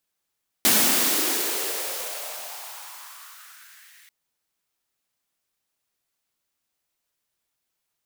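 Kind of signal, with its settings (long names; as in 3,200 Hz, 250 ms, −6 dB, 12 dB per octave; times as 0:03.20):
filter sweep on noise white, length 3.44 s highpass, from 210 Hz, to 2,000 Hz, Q 3.7, exponential, gain ramp −37 dB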